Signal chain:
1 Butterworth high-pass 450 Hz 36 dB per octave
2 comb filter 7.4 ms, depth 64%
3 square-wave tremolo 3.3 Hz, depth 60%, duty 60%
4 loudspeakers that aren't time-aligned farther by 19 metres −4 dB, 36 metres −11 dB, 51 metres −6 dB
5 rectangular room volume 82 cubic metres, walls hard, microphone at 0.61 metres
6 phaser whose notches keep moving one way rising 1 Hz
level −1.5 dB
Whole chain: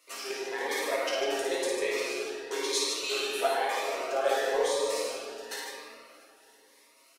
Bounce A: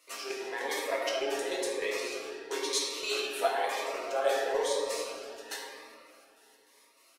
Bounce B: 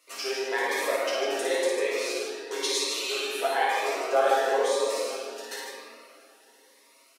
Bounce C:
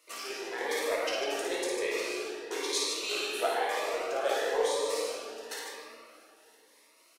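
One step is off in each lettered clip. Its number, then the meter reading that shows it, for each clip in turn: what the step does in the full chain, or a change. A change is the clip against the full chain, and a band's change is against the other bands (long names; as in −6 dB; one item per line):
4, change in crest factor +2.0 dB
3, change in momentary loudness spread +2 LU
2, change in integrated loudness −1.5 LU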